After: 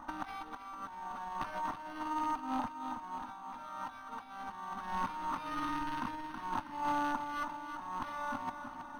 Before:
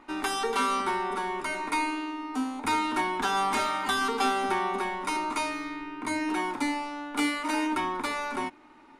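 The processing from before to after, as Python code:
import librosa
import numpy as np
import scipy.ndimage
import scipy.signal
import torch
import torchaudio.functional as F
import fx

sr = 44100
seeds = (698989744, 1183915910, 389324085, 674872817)

y = fx.rattle_buzz(x, sr, strikes_db=-47.0, level_db=-28.0)
y = fx.peak_eq(y, sr, hz=680.0, db=-7.5, octaves=0.66, at=(4.21, 6.55))
y = fx.over_compress(y, sr, threshold_db=-36.0, ratio=-0.5)
y = fx.fixed_phaser(y, sr, hz=980.0, stages=4)
y = fx.echo_feedback(y, sr, ms=322, feedback_pct=54, wet_db=-8.5)
y = np.interp(np.arange(len(y)), np.arange(len(y))[::6], y[::6])
y = y * librosa.db_to_amplitude(1.0)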